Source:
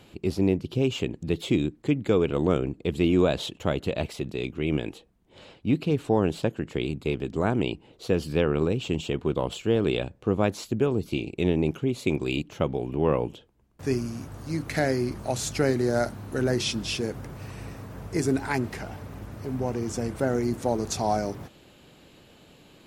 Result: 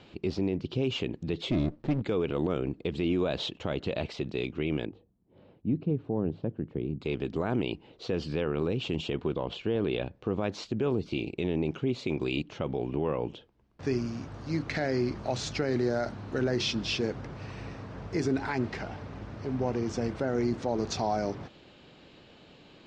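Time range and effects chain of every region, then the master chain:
0:01.51–0:02.02: low-shelf EQ 350 Hz +5 dB + windowed peak hold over 33 samples
0:04.85–0:07.01: resonant band-pass 130 Hz, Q 0.51 + mains-hum notches 50/100 Hz
0:09.35–0:10.14: high-frequency loss of the air 110 metres + notch filter 1,300 Hz, Q 17
whole clip: low-pass filter 5,400 Hz 24 dB per octave; low-shelf EQ 130 Hz −4 dB; brickwall limiter −19 dBFS

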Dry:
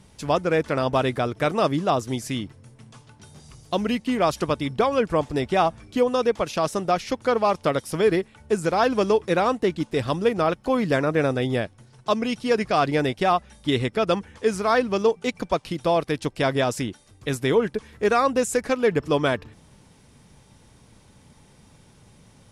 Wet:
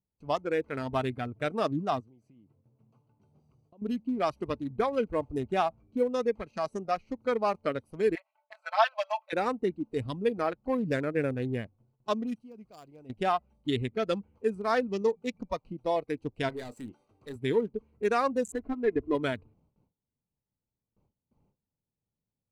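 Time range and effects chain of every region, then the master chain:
0:02.00–0:03.82: downward compressor, threshold −39 dBFS + high-pass filter 97 Hz
0:08.15–0:09.33: linear-phase brick-wall high-pass 530 Hz + high shelf with overshoot 5,400 Hz −10.5 dB, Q 1.5 + comb filter 4.6 ms, depth 100%
0:12.35–0:13.10: mu-law and A-law mismatch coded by mu + first-order pre-emphasis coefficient 0.8
0:16.49–0:17.36: downward compressor 1.5 to 1, threshold −46 dBFS + mid-hump overdrive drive 21 dB, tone 7,500 Hz, clips at −19 dBFS + double-tracking delay 28 ms −12 dB
0:18.52–0:19.15: variable-slope delta modulation 32 kbit/s + Gaussian smoothing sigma 2.5 samples + comb filter 2.9 ms, depth 69%
whole clip: adaptive Wiener filter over 25 samples; noise gate with hold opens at −43 dBFS; noise reduction from a noise print of the clip's start 10 dB; level −6 dB

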